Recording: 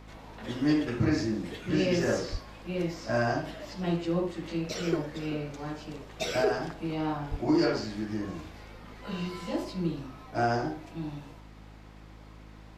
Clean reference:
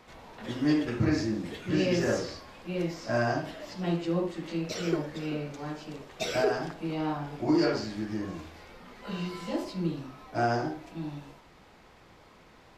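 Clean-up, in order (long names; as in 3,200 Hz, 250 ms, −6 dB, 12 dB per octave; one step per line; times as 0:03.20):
hum removal 52.9 Hz, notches 6
high-pass at the plosives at 0:02.31/0:07.30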